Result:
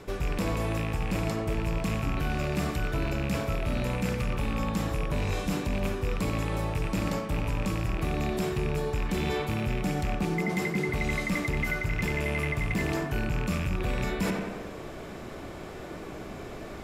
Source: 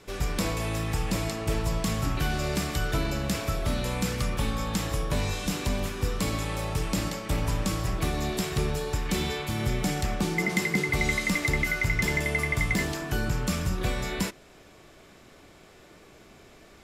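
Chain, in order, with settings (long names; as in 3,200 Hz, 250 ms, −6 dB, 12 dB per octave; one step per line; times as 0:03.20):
loose part that buzzes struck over −27 dBFS, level −19 dBFS
high-shelf EQ 2,200 Hz −11.5 dB
in parallel at +1.5 dB: brickwall limiter −23 dBFS, peak gain reduction 8 dB
on the sum: high-shelf EQ 11,000 Hz +6.5 dB
tape delay 89 ms, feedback 69%, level −10 dB, low-pass 2,900 Hz
reversed playback
downward compressor 6 to 1, threshold −33 dBFS, peak gain reduction 14.5 dB
reversed playback
level +6.5 dB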